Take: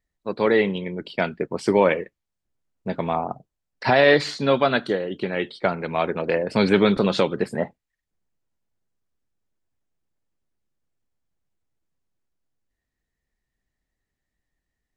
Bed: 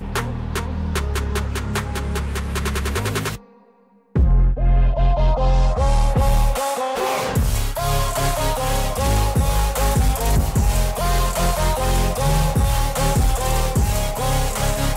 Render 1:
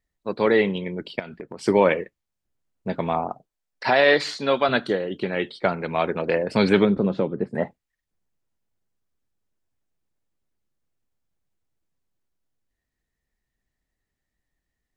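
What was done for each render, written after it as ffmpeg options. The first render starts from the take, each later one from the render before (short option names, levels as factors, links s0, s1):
-filter_complex "[0:a]asettb=1/sr,asplit=3[s0][s1][s2];[s0]atrim=end=1.194[s3];[s1]atrim=start=1.19:end=1.65,asetpts=PTS-STARTPTS,afade=t=in:d=0.004:c=qsin,afade=t=out:st=0.456:d=0.004:c=qsin,acompressor=threshold=0.0282:ratio=12:attack=3.2:release=140:knee=1:detection=peak[s4];[s2]atrim=start=1.646[s5];[s3][s4]acrossfade=d=0.004:c1=hsin:c2=qsin[s6];[s6][s5]acrossfade=d=0.004:c1=qsin:c2=hsin,asettb=1/sr,asplit=3[s7][s8][s9];[s7]atrim=end=3.294[s10];[s8]atrim=start=3.29:end=4.69,asetpts=PTS-STARTPTS,afade=t=in:d=0.004:c=qsin,afade=t=out:st=1.396:d=0.004:c=qsin,equalizer=f=76:w=0.42:g=-13[s11];[s9]atrim=start=4.686[s12];[s10][s11]acrossfade=d=0.004:c1=hsin:c2=qsin[s13];[s13][s12]acrossfade=d=0.004:c1=qsin:c2=hsin,asplit=3[s14][s15][s16];[s14]afade=t=out:st=6.84:d=0.02[s17];[s15]bandpass=f=190:t=q:w=0.5,afade=t=in:st=6.84:d=0.02,afade=t=out:st=7.54:d=0.02[s18];[s16]afade=t=in:st=7.54:d=0.02[s19];[s17][s18][s19]amix=inputs=3:normalize=0"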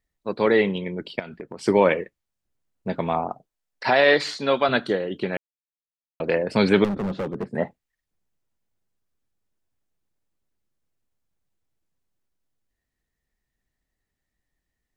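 -filter_complex "[0:a]asettb=1/sr,asplit=3[s0][s1][s2];[s0]atrim=end=6.844[s3];[s1]atrim=start=6.84:end=7.53,asetpts=PTS-STARTPTS,afade=t=in:d=0.004:c=qsin,afade=t=out:st=0.686:d=0.004:c=qsin,volume=15,asoftclip=hard,volume=0.0668[s4];[s2]atrim=start=7.526[s5];[s3][s4]acrossfade=d=0.004:c1=hsin:c2=qsin[s6];[s6][s5]acrossfade=d=0.004:c1=qsin:c2=hsin,asplit=3[s7][s8][s9];[s7]atrim=end=5.37,asetpts=PTS-STARTPTS,afade=t=out:st=5.366:d=0.004:c=hsin[s10];[s8]atrim=start=5.37:end=6.2,asetpts=PTS-STARTPTS,volume=0[s11];[s9]atrim=start=6.2,asetpts=PTS-STARTPTS,afade=t=in:d=0.004:c=hsin[s12];[s10][s11][s12]concat=n=3:v=0:a=1"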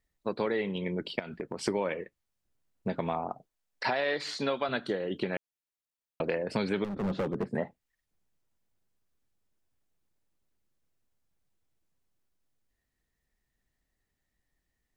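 -af "acompressor=threshold=0.0398:ratio=5"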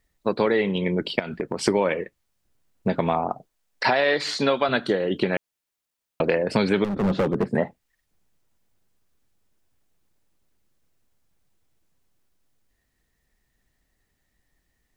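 -af "volume=2.82"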